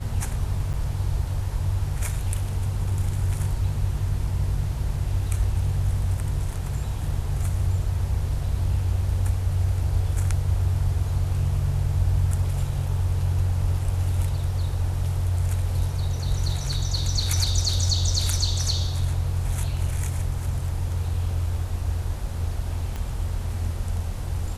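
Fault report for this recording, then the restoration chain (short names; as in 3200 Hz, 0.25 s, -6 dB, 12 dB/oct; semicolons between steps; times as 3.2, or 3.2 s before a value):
0.73–0.74 gap 7.7 ms
22.96 pop -19 dBFS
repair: de-click; interpolate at 0.73, 7.7 ms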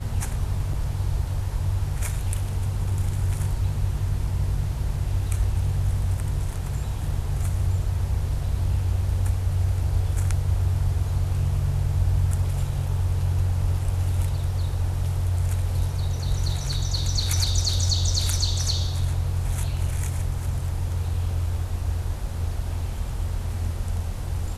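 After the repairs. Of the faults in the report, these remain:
22.96 pop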